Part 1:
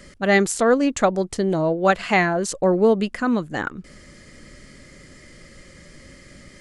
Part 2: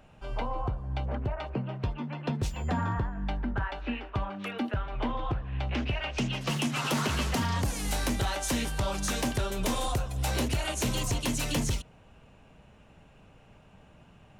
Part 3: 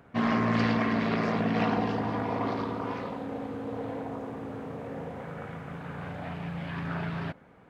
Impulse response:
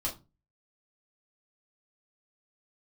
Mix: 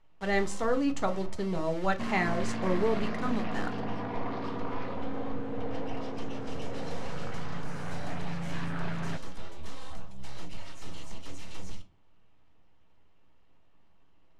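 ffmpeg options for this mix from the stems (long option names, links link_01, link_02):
-filter_complex "[0:a]aeval=exprs='val(0)*gte(abs(val(0)),0.0376)':channel_layout=same,volume=-14.5dB,asplit=2[link_01][link_02];[link_02]volume=-5dB[link_03];[1:a]aeval=exprs='abs(val(0))':channel_layout=same,volume=-17dB,asplit=2[link_04][link_05];[link_05]volume=-3dB[link_06];[2:a]alimiter=limit=-24dB:level=0:latency=1:release=315,asoftclip=type=tanh:threshold=-28.5dB,adelay=1850,volume=0dB[link_07];[3:a]atrim=start_sample=2205[link_08];[link_03][link_06]amix=inputs=2:normalize=0[link_09];[link_09][link_08]afir=irnorm=-1:irlink=0[link_10];[link_01][link_04][link_07][link_10]amix=inputs=4:normalize=0,lowpass=6900"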